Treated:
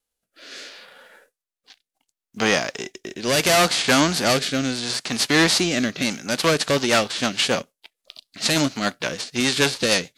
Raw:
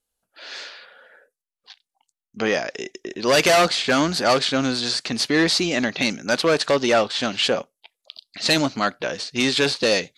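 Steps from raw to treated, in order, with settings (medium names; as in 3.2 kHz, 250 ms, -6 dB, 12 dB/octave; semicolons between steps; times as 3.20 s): formants flattened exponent 0.6; rotary cabinet horn 0.7 Hz, later 6.7 Hz, at 5.81 s; trim +2 dB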